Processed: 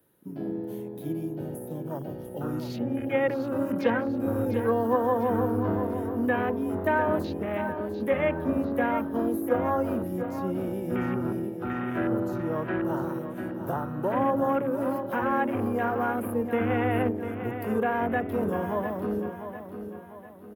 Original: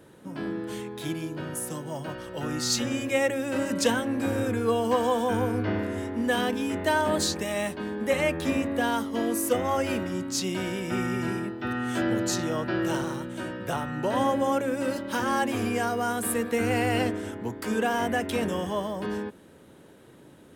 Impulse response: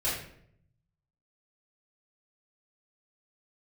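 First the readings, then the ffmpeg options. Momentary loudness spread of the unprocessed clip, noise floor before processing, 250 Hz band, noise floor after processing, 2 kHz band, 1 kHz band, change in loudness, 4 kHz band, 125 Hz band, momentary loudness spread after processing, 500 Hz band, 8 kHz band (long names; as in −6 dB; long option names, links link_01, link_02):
9 LU, −52 dBFS, +0.5 dB, −40 dBFS, −3.0 dB, 0.0 dB, −0.5 dB, below −15 dB, +0.5 dB, 10 LU, +0.5 dB, below −20 dB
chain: -filter_complex "[0:a]afwtdn=0.0251,acrossover=split=190|560|2500[link_01][link_02][link_03][link_04];[link_04]acompressor=threshold=-60dB:ratio=6[link_05];[link_01][link_02][link_03][link_05]amix=inputs=4:normalize=0,aexciter=amount=10.5:drive=6.2:freq=11000,aecho=1:1:698|1396|2094|2792|3490:0.335|0.144|0.0619|0.0266|0.0115"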